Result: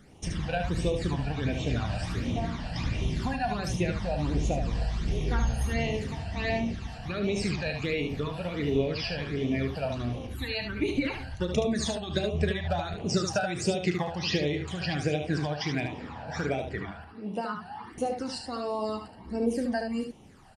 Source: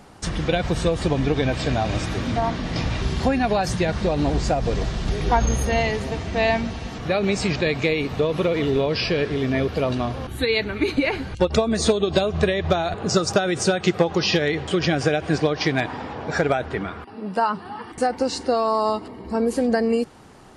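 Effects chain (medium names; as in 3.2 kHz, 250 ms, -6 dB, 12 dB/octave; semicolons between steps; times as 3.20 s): phase shifter stages 12, 1.4 Hz, lowest notch 350–1600 Hz; early reflections 34 ms -12 dB, 74 ms -6 dB; trim -6.5 dB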